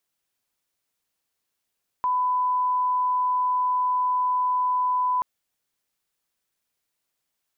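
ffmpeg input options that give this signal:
-f lavfi -i "sine=f=1000:d=3.18:r=44100,volume=-1.94dB"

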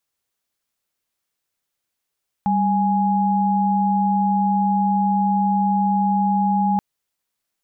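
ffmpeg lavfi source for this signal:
-f lavfi -i "aevalsrc='0.119*(sin(2*PI*196*t)+sin(2*PI*830.61*t))':d=4.33:s=44100"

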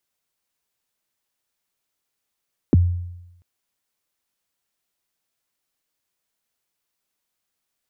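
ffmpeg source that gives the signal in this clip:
-f lavfi -i "aevalsrc='0.376*pow(10,-3*t/0.92)*sin(2*PI*(400*0.022/log(88/400)*(exp(log(88/400)*min(t,0.022)/0.022)-1)+88*max(t-0.022,0)))':d=0.69:s=44100"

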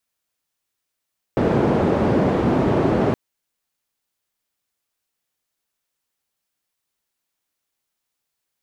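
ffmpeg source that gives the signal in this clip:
-f lavfi -i "anoisesrc=c=white:d=1.77:r=44100:seed=1,highpass=f=100,lowpass=f=430,volume=4.6dB"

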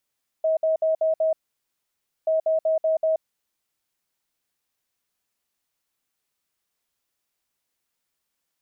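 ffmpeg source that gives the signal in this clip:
-f lavfi -i "aevalsrc='0.126*sin(2*PI*638*t)*clip(min(mod(mod(t,1.83),0.19),0.13-mod(mod(t,1.83),0.19))/0.005,0,1)*lt(mod(t,1.83),0.95)':d=3.66:s=44100"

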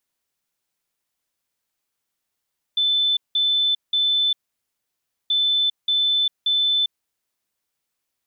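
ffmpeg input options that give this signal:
-f lavfi -i "aevalsrc='0.15*sin(2*PI*3520*t)*clip(min(mod(mod(t,2.53),0.58),0.4-mod(mod(t,2.53),0.58))/0.005,0,1)*lt(mod(t,2.53),1.74)':d=5.06:s=44100"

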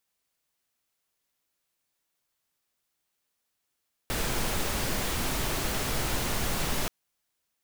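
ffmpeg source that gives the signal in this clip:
-f lavfi -i "anoisesrc=c=pink:a=0.182:d=2.78:r=44100:seed=1"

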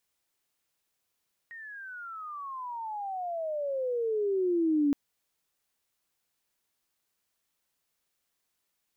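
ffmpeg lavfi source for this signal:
-f lavfi -i "aevalsrc='pow(10,(-21.5+20*(t/3.42-1))/20)*sin(2*PI*1880*3.42/(-33*log(2)/12)*(exp(-33*log(2)/12*t/3.42)-1))':d=3.42:s=44100"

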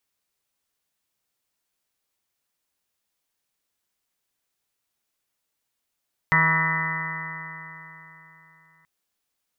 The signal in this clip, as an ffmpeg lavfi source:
-f lavfi -i "aevalsrc='0.0708*pow(10,-3*t/3.51)*sin(2*PI*160.05*t)+0.00794*pow(10,-3*t/3.51)*sin(2*PI*320.36*t)+0.00944*pow(10,-3*t/3.51)*sin(2*PI*481.23*t)+0.0112*pow(10,-3*t/3.51)*sin(2*PI*642.91*t)+0.01*pow(10,-3*t/3.51)*sin(2*PI*805.68*t)+0.0631*pow(10,-3*t/3.51)*sin(2*PI*969.8*t)+0.0501*pow(10,-3*t/3.51)*sin(2*PI*1135.53*t)+0.0447*pow(10,-3*t/3.51)*sin(2*PI*1303.14*t)+0.0266*pow(10,-3*t/3.51)*sin(2*PI*1472.87*t)+0.015*pow(10,-3*t/3.51)*sin(2*PI*1644.97*t)+0.0891*pow(10,-3*t/3.51)*sin(2*PI*1819.68*t)+0.119*pow(10,-3*t/3.51)*sin(2*PI*1997.24*t)':d=2.53:s=44100"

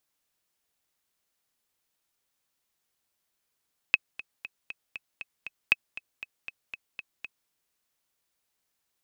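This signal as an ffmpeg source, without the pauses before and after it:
-f lavfi -i "aevalsrc='pow(10,(-6-18*gte(mod(t,7*60/236),60/236))/20)*sin(2*PI*2570*mod(t,60/236))*exp(-6.91*mod(t,60/236)/0.03)':d=3.55:s=44100"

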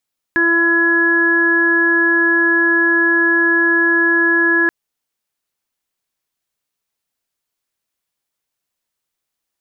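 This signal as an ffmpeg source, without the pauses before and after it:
-f lavfi -i "aevalsrc='0.141*sin(2*PI*337*t)+0.02*sin(2*PI*674*t)+0.0531*sin(2*PI*1011*t)+0.0266*sin(2*PI*1348*t)+0.251*sin(2*PI*1685*t)':d=4.33:s=44100"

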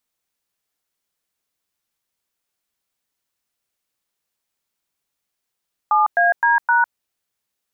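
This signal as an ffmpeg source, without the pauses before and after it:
-f lavfi -i "aevalsrc='0.178*clip(min(mod(t,0.259),0.154-mod(t,0.259))/0.002,0,1)*(eq(floor(t/0.259),0)*(sin(2*PI*852*mod(t,0.259))+sin(2*PI*1209*mod(t,0.259)))+eq(floor(t/0.259),1)*(sin(2*PI*697*mod(t,0.259))+sin(2*PI*1633*mod(t,0.259)))+eq(floor(t/0.259),2)*(sin(2*PI*941*mod(t,0.259))+sin(2*PI*1633*mod(t,0.259)))+eq(floor(t/0.259),3)*(sin(2*PI*941*mod(t,0.259))+sin(2*PI*1477*mod(t,0.259))))':d=1.036:s=44100"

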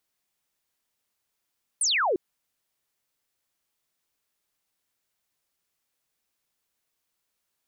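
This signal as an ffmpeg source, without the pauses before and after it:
-f lavfi -i "aevalsrc='0.0891*clip(t/0.002,0,1)*clip((0.35-t)/0.002,0,1)*sin(2*PI*10000*0.35/log(330/10000)*(exp(log(330/10000)*t/0.35)-1))':d=0.35:s=44100"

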